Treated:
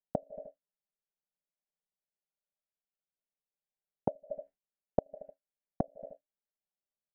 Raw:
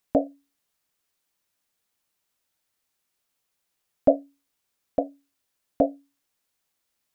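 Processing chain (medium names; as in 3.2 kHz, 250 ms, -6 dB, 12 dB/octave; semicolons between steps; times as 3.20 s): peaking EQ 250 Hz -4.5 dB 0.83 oct; static phaser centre 310 Hz, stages 6; comb 5 ms, depth 80%; feedback delay 76 ms, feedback 55%, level -20.5 dB; gate with hold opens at -43 dBFS; low-pass 1.5 kHz 24 dB/octave; inverted gate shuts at -21 dBFS, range -32 dB; trim +6 dB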